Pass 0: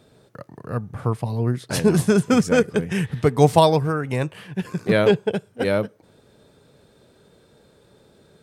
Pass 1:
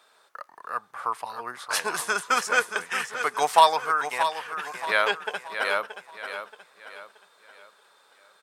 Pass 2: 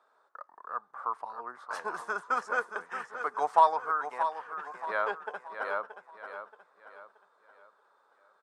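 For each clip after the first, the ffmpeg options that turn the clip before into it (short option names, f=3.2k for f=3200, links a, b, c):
-filter_complex "[0:a]highpass=f=1.1k:t=q:w=2,asplit=2[a][b];[b]aecho=0:1:627|1254|1881|2508:0.335|0.131|0.0509|0.0199[c];[a][c]amix=inputs=2:normalize=0"
-af "highpass=200,lowpass=7.8k,highshelf=f=1.8k:t=q:w=1.5:g=-12,volume=-7dB"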